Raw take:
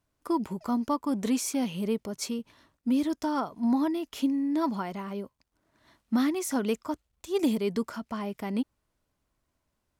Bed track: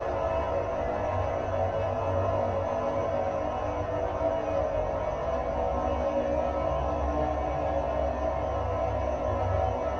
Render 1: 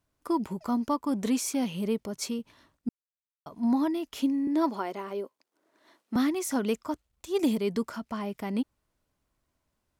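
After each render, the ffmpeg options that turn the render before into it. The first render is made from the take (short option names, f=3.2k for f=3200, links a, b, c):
-filter_complex "[0:a]asettb=1/sr,asplit=3[a][b][c];[a]atrim=end=4.474[d];[b]atrim=start=4.47:end=6.16,asetpts=PTS-STARTPTS,afade=t=in:d=0.004:c=qsin,afade=t=out:st=1.686:d=0.004:c=qsin,highpass=f=370:t=q:w=1.7[e];[c]atrim=start=6.156[f];[d][e]acrossfade=d=0.004:c1=hsin:c2=qsin[g];[g][f]acrossfade=d=0.004:c1=qsin:c2=hsin,asplit=3[h][i][j];[h]atrim=end=2.89,asetpts=PTS-STARTPTS,afade=t=out:st=2.886:d=0.004:c=hsin[k];[i]atrim=start=2.89:end=3.46,asetpts=PTS-STARTPTS,volume=0[l];[j]atrim=start=3.46,asetpts=PTS-STARTPTS,afade=t=in:d=0.004:c=hsin[m];[k][l][m]concat=n=3:v=0:a=1"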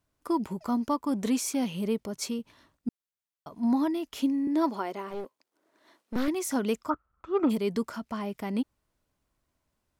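-filter_complex "[0:a]asettb=1/sr,asplit=3[a][b][c];[a]atrim=end=5.104[d];[b]atrim=start=5.1:end=6.28,asetpts=PTS-STARTPTS,afade=t=in:d=0.004:c=qsin,afade=t=out:st=1.176:d=0.004:c=qsin,aeval=exprs='clip(val(0),-1,0.00944)':c=same[e];[c]atrim=start=6.276[f];[d][e]acrossfade=d=0.004:c1=hsin:c2=qsin[g];[g][f]acrossfade=d=0.004:c1=qsin:c2=hsin,asplit=3[h][i][j];[h]afade=t=out:st=6.89:d=0.02[k];[i]lowpass=f=1.3k:t=q:w=14,afade=t=in:st=6.89:d=0.02,afade=t=out:st=7.49:d=0.02[l];[j]afade=t=in:st=7.49:d=0.02[m];[k][l][m]amix=inputs=3:normalize=0"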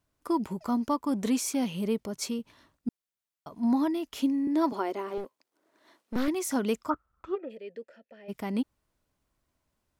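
-filter_complex "[0:a]asettb=1/sr,asplit=3[a][b][c];[a]atrim=end=4.724[d];[b]atrim=start=4.72:end=5.18,asetpts=PTS-STARTPTS,afade=t=in:d=0.004:c=qsin,afade=t=out:st=0.456:d=0.004:c=qsin,highpass=f=290:t=q:w=1.9[e];[c]atrim=start=5.176[f];[d][e]acrossfade=d=0.004:c1=hsin:c2=qsin[g];[g][f]acrossfade=d=0.004:c1=qsin:c2=hsin,asplit=3[h][i][j];[h]afade=t=out:st=7.34:d=0.02[k];[i]asplit=3[l][m][n];[l]bandpass=f=530:t=q:w=8,volume=0dB[o];[m]bandpass=f=1.84k:t=q:w=8,volume=-6dB[p];[n]bandpass=f=2.48k:t=q:w=8,volume=-9dB[q];[o][p][q]amix=inputs=3:normalize=0,afade=t=in:st=7.34:d=0.02,afade=t=out:st=8.28:d=0.02[r];[j]afade=t=in:st=8.28:d=0.02[s];[k][r][s]amix=inputs=3:normalize=0"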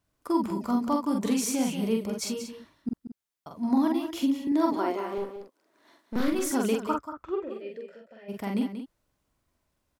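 -filter_complex "[0:a]asplit=2[a][b];[b]adelay=45,volume=-3dB[c];[a][c]amix=inputs=2:normalize=0,aecho=1:1:184:0.316"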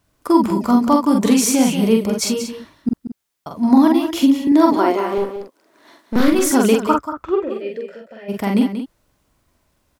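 -af "volume=12dB,alimiter=limit=-1dB:level=0:latency=1"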